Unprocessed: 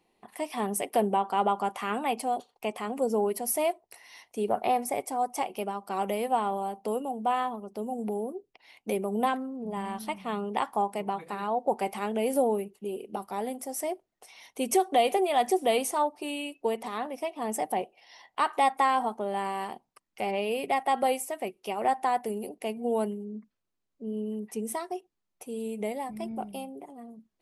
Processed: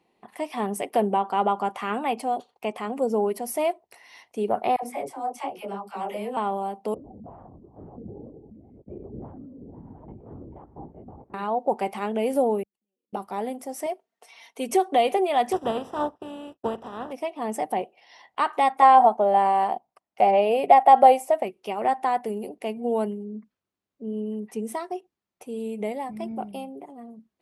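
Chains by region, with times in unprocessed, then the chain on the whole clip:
0:04.76–0:06.37: all-pass dispersion lows, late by 72 ms, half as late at 690 Hz + micro pitch shift up and down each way 35 cents
0:06.94–0:11.34: delay that plays each chunk backwards 676 ms, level −7 dB + four-pole ladder band-pass 250 Hz, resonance 25% + linear-prediction vocoder at 8 kHz whisper
0:12.63–0:13.13: comb filter 3.7 ms, depth 85% + downward compressor 10 to 1, threshold −52 dBFS + gate with flip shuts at −50 dBFS, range −35 dB
0:13.86–0:14.69: high-pass filter 440 Hz 6 dB per octave + comb filter 4.4 ms, depth 48%
0:15.51–0:17.11: compressing power law on the bin magnitudes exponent 0.43 + moving average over 20 samples + downward expander −50 dBFS
0:18.82–0:21.43: noise gate −48 dBFS, range −6 dB + parametric band 700 Hz +13.5 dB 0.79 octaves
whole clip: high-pass filter 62 Hz; high-shelf EQ 5,300 Hz −9.5 dB; level +3 dB

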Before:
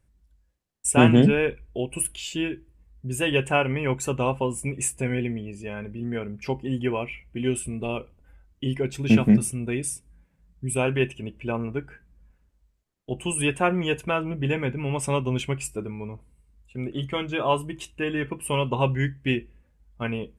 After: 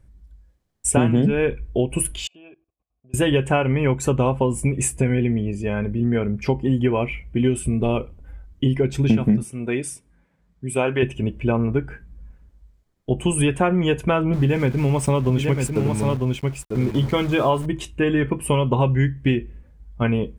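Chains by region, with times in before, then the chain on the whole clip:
0:02.27–0:03.14: high-shelf EQ 8,600 Hz −10.5 dB + output level in coarse steps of 18 dB + formant filter a
0:09.43–0:11.03: high-pass filter 540 Hz 6 dB per octave + high-shelf EQ 5,500 Hz −7.5 dB
0:14.33–0:17.66: centre clipping without the shift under −39 dBFS + single-tap delay 948 ms −7 dB
whole clip: spectral tilt −1.5 dB per octave; notch filter 2,700 Hz, Q 17; downward compressor 6 to 1, threshold −23 dBFS; level +8 dB

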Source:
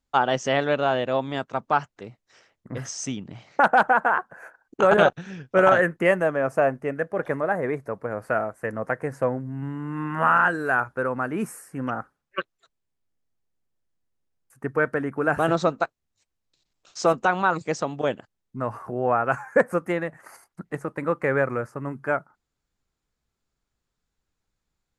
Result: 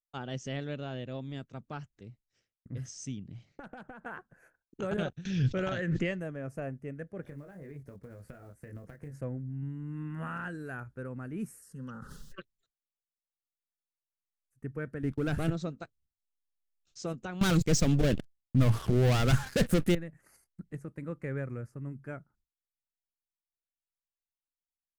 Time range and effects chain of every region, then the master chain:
0:03.45–0:04.06: high-shelf EQ 2,900 Hz −4.5 dB + downward compressor 3 to 1, threshold −26 dBFS
0:05.25–0:06.20: Butterworth low-pass 7,500 Hz 48 dB per octave + parametric band 3,900 Hz +10 dB 1.2 octaves + background raised ahead of every attack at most 38 dB per second
0:07.22–0:09.21: one scale factor per block 7 bits + double-tracking delay 21 ms −3.5 dB + downward compressor 10 to 1, threshold −29 dBFS
0:11.62–0:12.39: parametric band 3,600 Hz +9.5 dB 2.3 octaves + phaser with its sweep stopped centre 460 Hz, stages 8 + level that may fall only so fast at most 41 dB per second
0:15.03–0:15.50: downward expander −36 dBFS + leveller curve on the samples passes 2
0:17.41–0:19.95: high-shelf EQ 8,300 Hz +5 dB + leveller curve on the samples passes 5
whole clip: downward expander −50 dBFS; guitar amp tone stack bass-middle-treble 10-0-1; level +9 dB

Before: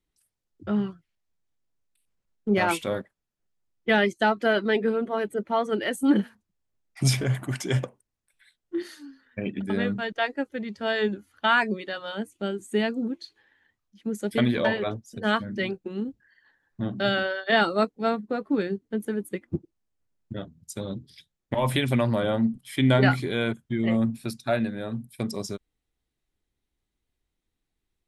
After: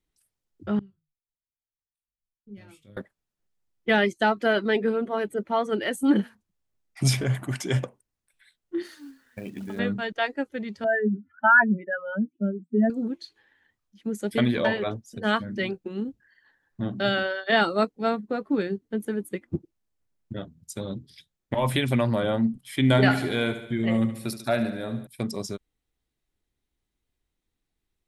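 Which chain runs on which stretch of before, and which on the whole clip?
0:00.79–0:02.97: guitar amp tone stack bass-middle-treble 10-0-1 + flanger 1.7 Hz, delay 6.2 ms, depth 4.1 ms, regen −72% + double-tracking delay 20 ms −7.5 dB
0:08.86–0:09.79: high-shelf EQ 2,800 Hz −4.5 dB + downward compressor 4 to 1, threshold −32 dBFS + log-companded quantiser 6 bits
0:10.84–0:12.90: expanding power law on the bin magnitudes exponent 2.7 + loudspeaker in its box 150–2,200 Hz, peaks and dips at 170 Hz +10 dB, 240 Hz +9 dB, 370 Hz −7 dB, 620 Hz +4 dB, 1,000 Hz +4 dB, 1,600 Hz +9 dB
0:22.84–0:25.07: high-shelf EQ 5,900 Hz +6.5 dB + repeating echo 72 ms, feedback 58%, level −11.5 dB
whole clip: no processing

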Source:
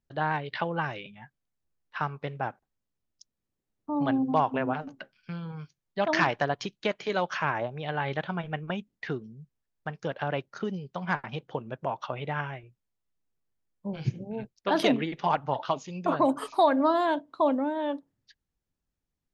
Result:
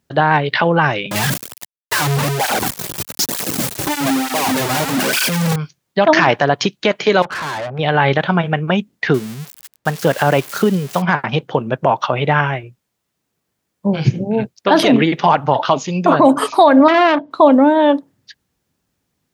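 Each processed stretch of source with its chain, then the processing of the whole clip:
0:01.11–0:05.56: sign of each sample alone + high-shelf EQ 6,400 Hz +5.5 dB + through-zero flanger with one copy inverted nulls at 1.1 Hz, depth 4.7 ms
0:07.22–0:07.79: low-pass filter 2,200 Hz 24 dB per octave + tube saturation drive 40 dB, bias 0.55
0:09.14–0:11.02: spike at every zero crossing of −31 dBFS + high-shelf EQ 4,900 Hz −8.5 dB
0:16.88–0:17.31: high-frequency loss of the air 150 metres + saturating transformer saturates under 1,700 Hz
whole clip: high-pass filter 100 Hz; boost into a limiter +19 dB; level −1 dB

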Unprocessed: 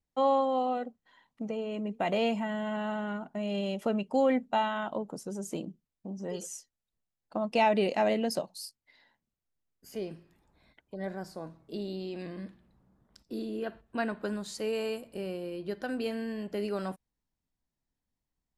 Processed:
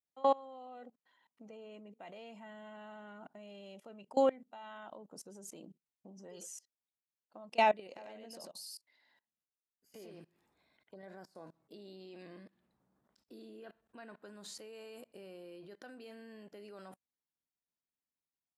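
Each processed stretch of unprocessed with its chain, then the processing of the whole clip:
0:07.87–0:11.03: downward compressor 16 to 1, threshold −36 dBFS + single-tap delay 97 ms −3 dB
whole clip: output level in coarse steps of 24 dB; high-pass filter 330 Hz 6 dB per octave

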